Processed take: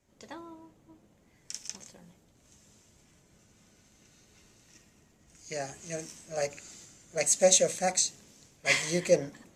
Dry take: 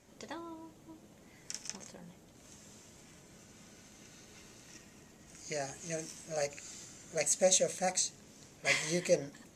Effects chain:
multiband upward and downward expander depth 40%
level +2 dB

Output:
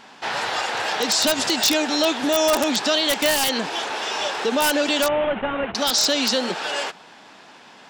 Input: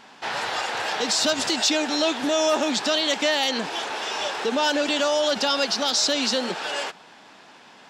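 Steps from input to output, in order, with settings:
0:05.08–0:05.75: variable-slope delta modulation 16 kbit/s
wrap-around overflow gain 11.5 dB
level +2.5 dB

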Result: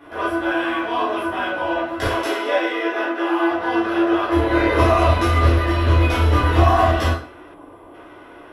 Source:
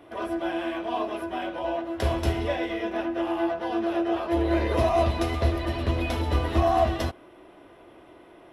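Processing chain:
0:02.04–0:03.51: Butterworth high-pass 290 Hz 36 dB per octave
convolution reverb RT60 0.45 s, pre-delay 5 ms, DRR −7 dB
0:07.54–0:07.95: gain on a spectral selection 1,200–7,400 Hz −9 dB
parametric band 1,400 Hz +8 dB 0.96 octaves
level −1 dB

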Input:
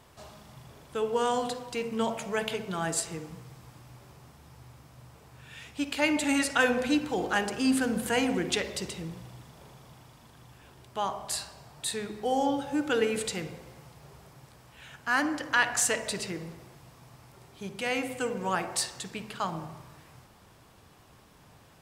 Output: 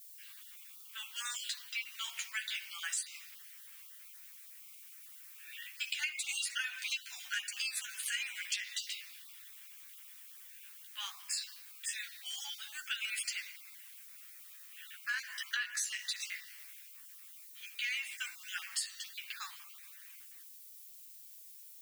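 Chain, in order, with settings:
time-frequency cells dropped at random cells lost 27%
noise gate with hold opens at −46 dBFS
low-pass that shuts in the quiet parts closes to 2,700 Hz, open at −26 dBFS
background noise violet −57 dBFS
flanger 1.2 Hz, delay 1.2 ms, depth 2 ms, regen −66%
inverse Chebyshev high-pass filter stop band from 550 Hz, stop band 60 dB
multi-voice chorus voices 2, 0.15 Hz, delay 12 ms, depth 4.4 ms
downward compressor 8 to 1, threshold −45 dBFS, peak gain reduction 14 dB
level +11.5 dB

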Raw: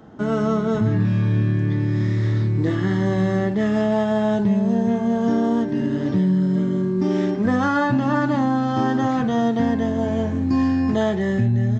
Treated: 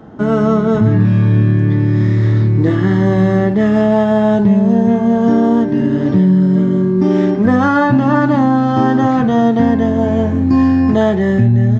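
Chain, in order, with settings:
high-shelf EQ 2,900 Hz −8 dB
level +8 dB

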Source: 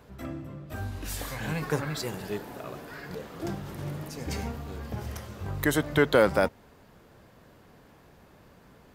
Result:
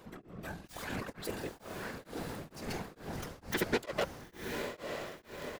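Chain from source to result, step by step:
phase distortion by the signal itself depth 0.35 ms
low-shelf EQ 140 Hz −9.5 dB
in parallel at 0 dB: downward compressor, threshold −42 dBFS, peak gain reduction 22 dB
on the sum: random phases in short frames
tempo change 1.6×
on a send: feedback delay with all-pass diffusion 915 ms, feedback 51%, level −6 dB
on the sum: tremolo along a rectified sine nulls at 2.2 Hz
level −4.5 dB

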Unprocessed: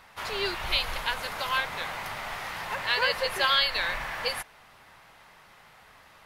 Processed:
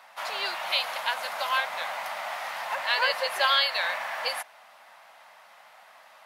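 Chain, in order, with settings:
high-pass filter 210 Hz 24 dB per octave
low shelf with overshoot 500 Hz −7.5 dB, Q 3

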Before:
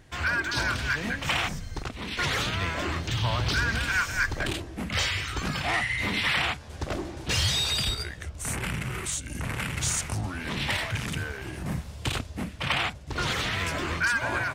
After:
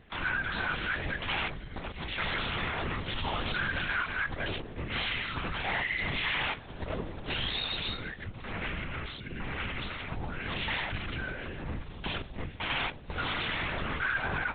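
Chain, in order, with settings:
high-pass filter 52 Hz
parametric band 130 Hz −7 dB 0.81 octaves
soft clipping −27 dBFS, distortion −11 dB
linear-prediction vocoder at 8 kHz whisper

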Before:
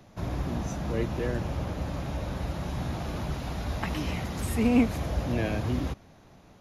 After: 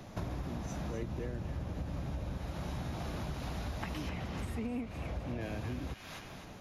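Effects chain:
0:01.02–0:02.38: low-shelf EQ 350 Hz +6.5 dB
delay with a high-pass on its return 258 ms, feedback 35%, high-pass 1,400 Hz, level −6 dB
downward compressor 12 to 1, threshold −40 dBFS, peak gain reduction 23 dB
0:04.09–0:05.41: high-shelf EQ 5,500 Hz −11.5 dB
level +5 dB

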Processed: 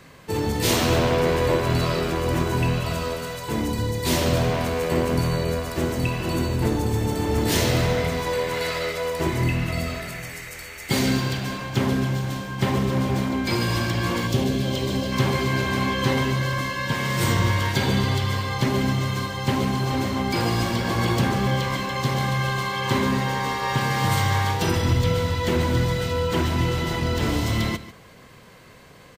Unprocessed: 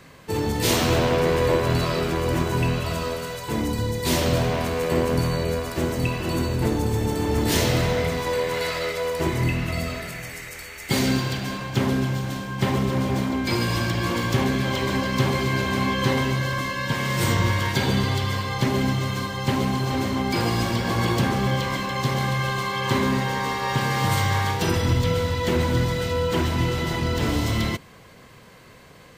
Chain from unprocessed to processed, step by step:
0:14.27–0:15.12: flat-topped bell 1,400 Hz −8.5 dB
single-tap delay 145 ms −15.5 dB

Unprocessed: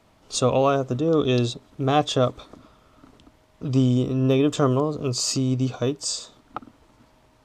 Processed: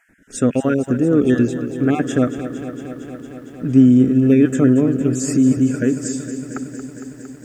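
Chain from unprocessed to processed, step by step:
time-frequency cells dropped at random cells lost 20%
drawn EQ curve 120 Hz 0 dB, 250 Hz +11 dB, 1,100 Hz −14 dB, 1,600 Hz +15 dB, 4,200 Hz −18 dB, 7,300 Hz +2 dB
feedback echo at a low word length 229 ms, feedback 80%, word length 9 bits, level −12 dB
level +1 dB

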